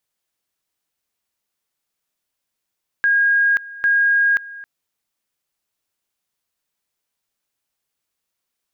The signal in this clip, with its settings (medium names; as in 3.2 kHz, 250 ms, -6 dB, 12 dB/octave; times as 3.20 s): two-level tone 1.63 kHz -12.5 dBFS, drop 19.5 dB, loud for 0.53 s, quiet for 0.27 s, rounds 2